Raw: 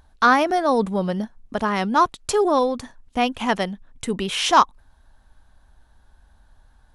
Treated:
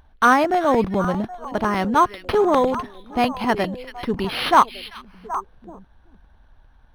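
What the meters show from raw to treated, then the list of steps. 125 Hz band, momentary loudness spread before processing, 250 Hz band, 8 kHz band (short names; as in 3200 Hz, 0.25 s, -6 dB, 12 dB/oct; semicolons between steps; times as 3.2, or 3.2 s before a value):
+2.0 dB, 12 LU, +1.5 dB, -7.0 dB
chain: delay with a stepping band-pass 0.386 s, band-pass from 2700 Hz, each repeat -1.4 oct, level -9 dB; crackling interface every 0.10 s, samples 128, repeat, from 0.44; decimation joined by straight lines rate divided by 6×; gain +1.5 dB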